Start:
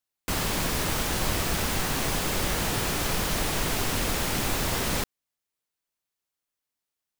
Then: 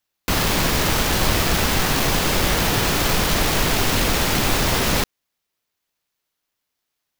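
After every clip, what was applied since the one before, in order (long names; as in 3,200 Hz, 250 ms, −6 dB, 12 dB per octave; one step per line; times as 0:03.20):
running median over 5 samples
high-shelf EQ 5,500 Hz +9.5 dB
level +8 dB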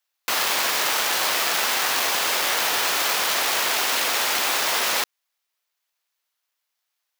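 high-pass filter 710 Hz 12 dB per octave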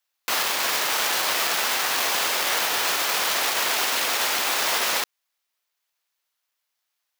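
brickwall limiter −11 dBFS, peak gain reduction 4.5 dB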